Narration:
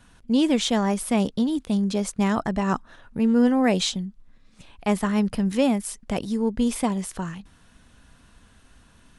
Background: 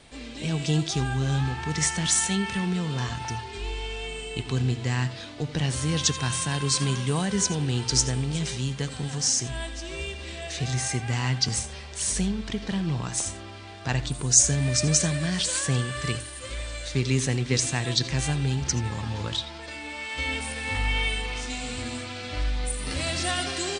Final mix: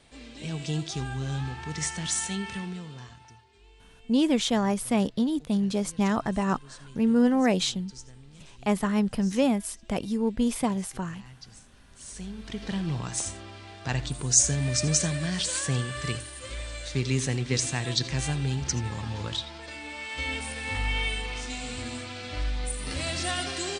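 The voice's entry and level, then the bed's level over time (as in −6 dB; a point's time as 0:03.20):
3.80 s, −2.5 dB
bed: 0:02.54 −6 dB
0:03.46 −23.5 dB
0:11.77 −23.5 dB
0:12.66 −2.5 dB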